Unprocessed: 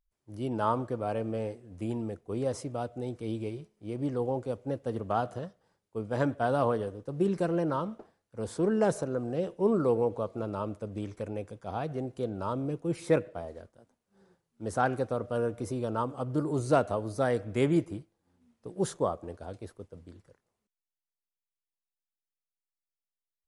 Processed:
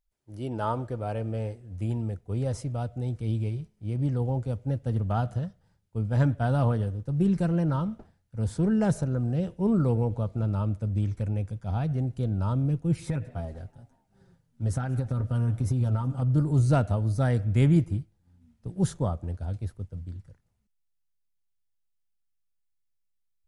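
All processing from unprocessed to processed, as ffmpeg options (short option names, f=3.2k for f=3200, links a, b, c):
-filter_complex "[0:a]asettb=1/sr,asplit=3[a][b][c];[a]atrim=end=13.064[d];[b]atrim=start=13.06:end=16.22,asetpts=PTS-STARTPTS,afade=t=in:d=0.004:c=qsin,afade=t=out:st=3.156:d=0.004:c=qsin,aecho=1:1:7.5:0.63,atrim=end_sample=139356,acompressor=threshold=-29dB:ratio=12:attack=3.2:release=140:knee=1:detection=peak,asplit=4[e][f][g][h];[f]adelay=185,afreqshift=84,volume=-22dB[i];[g]adelay=370,afreqshift=168,volume=-28.4dB[j];[h]adelay=555,afreqshift=252,volume=-34.8dB[k];[e][i][j][k]amix=inputs=4:normalize=0,atrim=end_sample=139356[l];[c]atrim=start=16.216[m];[d][l]acrossfade=d=0.004:c1=hsin:c2=qsin[n];[n][m]acrossfade=d=0.004:c1=qsin:c2=hsin,bandreject=f=1.1k:w=8.6,asubboost=boost=9.5:cutoff=130"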